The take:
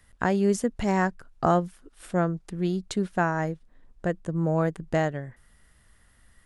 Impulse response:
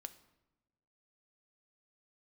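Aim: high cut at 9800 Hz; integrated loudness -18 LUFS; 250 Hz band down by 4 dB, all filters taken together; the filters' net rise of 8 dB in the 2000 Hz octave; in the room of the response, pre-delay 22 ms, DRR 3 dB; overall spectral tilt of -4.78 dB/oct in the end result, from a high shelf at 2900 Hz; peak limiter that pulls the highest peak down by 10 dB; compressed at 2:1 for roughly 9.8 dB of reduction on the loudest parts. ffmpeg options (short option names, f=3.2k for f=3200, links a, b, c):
-filter_complex "[0:a]lowpass=9.8k,equalizer=f=250:t=o:g=-7,equalizer=f=2k:t=o:g=8,highshelf=f=2.9k:g=7,acompressor=threshold=-36dB:ratio=2,alimiter=level_in=0.5dB:limit=-24dB:level=0:latency=1,volume=-0.5dB,asplit=2[a][b];[1:a]atrim=start_sample=2205,adelay=22[c];[b][c]afir=irnorm=-1:irlink=0,volume=2dB[d];[a][d]amix=inputs=2:normalize=0,volume=17.5dB"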